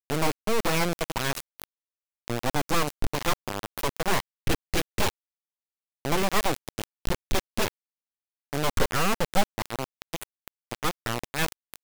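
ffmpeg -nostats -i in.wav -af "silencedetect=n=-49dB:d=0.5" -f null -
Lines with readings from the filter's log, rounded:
silence_start: 1.64
silence_end: 2.28 | silence_duration: 0.64
silence_start: 5.10
silence_end: 6.05 | silence_duration: 0.95
silence_start: 7.68
silence_end: 8.53 | silence_duration: 0.85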